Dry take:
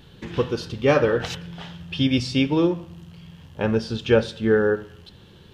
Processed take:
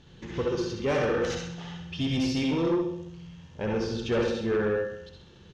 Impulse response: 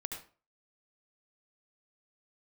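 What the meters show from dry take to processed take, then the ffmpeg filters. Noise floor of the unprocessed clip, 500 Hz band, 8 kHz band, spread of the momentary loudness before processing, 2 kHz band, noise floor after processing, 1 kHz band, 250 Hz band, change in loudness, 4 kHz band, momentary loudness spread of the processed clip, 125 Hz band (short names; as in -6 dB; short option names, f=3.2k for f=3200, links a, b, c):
-49 dBFS, -6.0 dB, -1.5 dB, 14 LU, -6.5 dB, -52 dBFS, -5.0 dB, -5.5 dB, -6.5 dB, -6.0 dB, 14 LU, -6.5 dB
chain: -filter_complex "[0:a]lowpass=f=6.4k:t=q:w=4.3,highshelf=f=4.2k:g=-10,aecho=1:1:65|130|195|260|325|390:0.398|0.211|0.112|0.0593|0.0314|0.0166[a];[1:a]atrim=start_sample=2205,asetrate=48510,aresample=44100[b];[a][b]afir=irnorm=-1:irlink=0,asoftclip=type=tanh:threshold=-18dB,volume=-2.5dB"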